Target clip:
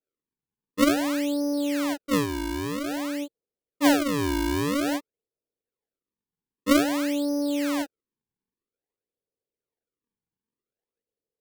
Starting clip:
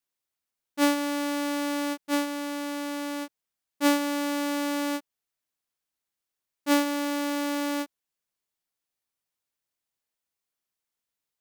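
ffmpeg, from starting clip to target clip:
-af "lowpass=f=460:t=q:w=4.9,acrusher=samples=39:mix=1:aa=0.000001:lfo=1:lforange=62.4:lforate=0.51"

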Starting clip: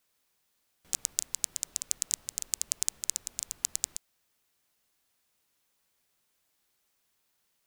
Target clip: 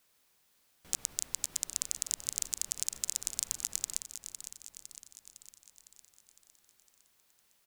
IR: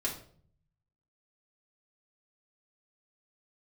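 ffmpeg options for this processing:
-af "alimiter=limit=0.266:level=0:latency=1:release=65,aecho=1:1:507|1014|1521|2028|2535|3042|3549:0.316|0.183|0.106|0.0617|0.0358|0.0208|0.012,volume=1.68"

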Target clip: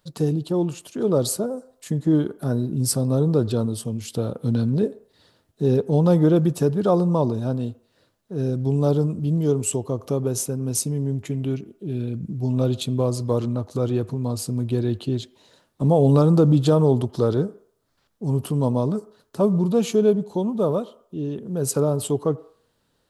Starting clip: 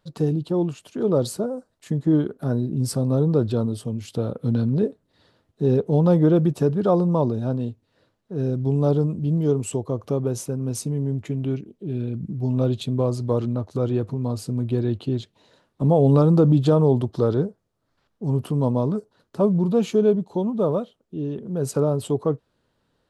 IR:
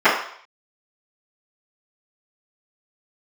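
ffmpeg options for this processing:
-filter_complex "[0:a]highshelf=f=5100:g=11.5,asplit=2[s0][s1];[1:a]atrim=start_sample=2205,adelay=77[s2];[s1][s2]afir=irnorm=-1:irlink=0,volume=0.00501[s3];[s0][s3]amix=inputs=2:normalize=0"

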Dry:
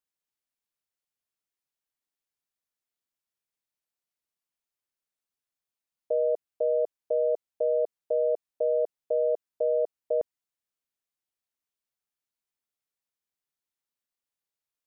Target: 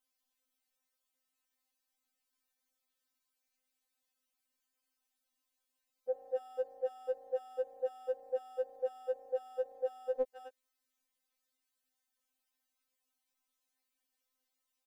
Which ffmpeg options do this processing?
-filter_complex "[0:a]asplit=2[s0][s1];[s1]adelay=260,highpass=300,lowpass=3400,asoftclip=type=hard:threshold=0.0447,volume=0.178[s2];[s0][s2]amix=inputs=2:normalize=0,acontrast=89,afftfilt=real='re*3.46*eq(mod(b,12),0)':imag='im*3.46*eq(mod(b,12),0)':win_size=2048:overlap=0.75"

